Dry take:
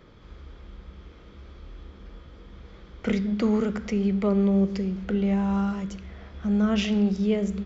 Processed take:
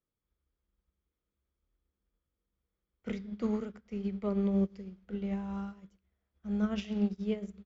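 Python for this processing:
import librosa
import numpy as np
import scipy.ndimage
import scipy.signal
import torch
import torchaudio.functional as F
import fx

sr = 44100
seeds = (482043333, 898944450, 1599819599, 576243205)

y = fx.upward_expand(x, sr, threshold_db=-42.0, expansion=2.5)
y = y * 10.0 ** (-5.5 / 20.0)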